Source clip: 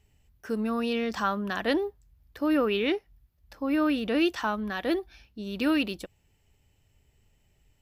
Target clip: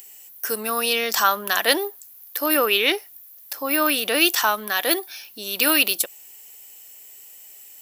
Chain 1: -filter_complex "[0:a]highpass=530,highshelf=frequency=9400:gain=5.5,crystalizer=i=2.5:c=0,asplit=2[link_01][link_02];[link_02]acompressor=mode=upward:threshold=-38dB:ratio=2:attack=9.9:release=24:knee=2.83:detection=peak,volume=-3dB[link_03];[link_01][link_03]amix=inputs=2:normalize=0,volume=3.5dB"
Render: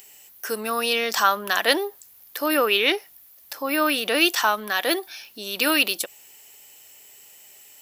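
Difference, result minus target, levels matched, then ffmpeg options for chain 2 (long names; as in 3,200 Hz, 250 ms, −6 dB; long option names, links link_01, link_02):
8,000 Hz band −3.5 dB
-filter_complex "[0:a]highpass=530,highshelf=frequency=9400:gain=16.5,crystalizer=i=2.5:c=0,asplit=2[link_01][link_02];[link_02]acompressor=mode=upward:threshold=-38dB:ratio=2:attack=9.9:release=24:knee=2.83:detection=peak,volume=-3dB[link_03];[link_01][link_03]amix=inputs=2:normalize=0,volume=3.5dB"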